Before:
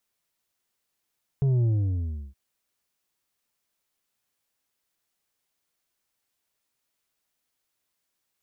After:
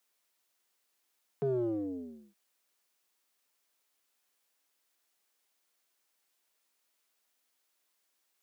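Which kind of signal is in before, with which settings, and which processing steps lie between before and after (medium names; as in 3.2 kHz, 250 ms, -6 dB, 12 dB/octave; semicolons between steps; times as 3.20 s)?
sub drop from 140 Hz, over 0.92 s, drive 6 dB, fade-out 0.70 s, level -20 dB
dynamic bell 430 Hz, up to +7 dB, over -42 dBFS, Q 0.79; Bessel high-pass 300 Hz, order 6; in parallel at -11.5 dB: hard clipper -34.5 dBFS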